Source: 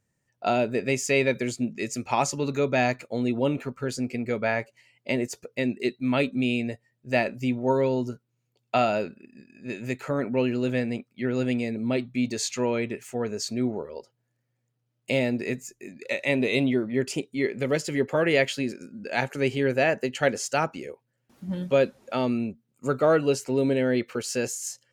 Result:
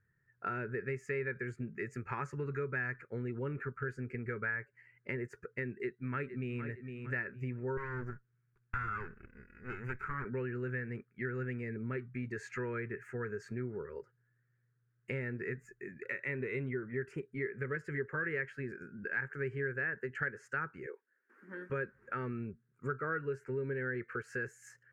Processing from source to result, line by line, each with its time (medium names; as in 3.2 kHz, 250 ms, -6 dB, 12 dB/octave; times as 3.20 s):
5.68–6.60 s: echo throw 460 ms, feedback 30%, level -12.5 dB
7.77–10.25 s: comb filter that takes the minimum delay 0.84 ms
20.86–21.70 s: steep high-pass 270 Hz
whole clip: FFT filter 140 Hz 0 dB, 270 Hz -13 dB, 410 Hz -1 dB, 670 Hz -23 dB, 1.6 kHz +10 dB, 3.5 kHz -28 dB, 7.8 kHz -21 dB; compression 3:1, threshold -38 dBFS; treble shelf 6.5 kHz -5.5 dB; trim +1 dB